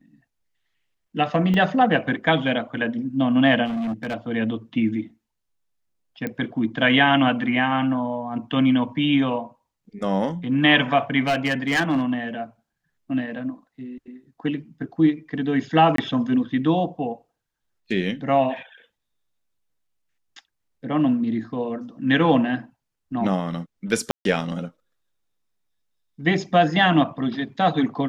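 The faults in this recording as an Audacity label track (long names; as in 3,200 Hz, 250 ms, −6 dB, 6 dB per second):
1.540000	1.540000	drop-out 2.1 ms
3.650000	4.150000	clipping −23.5 dBFS
6.270000	6.270000	click −15 dBFS
11.270000	12.020000	clipping −16.5 dBFS
15.960000	15.980000	drop-out 23 ms
24.110000	24.250000	drop-out 142 ms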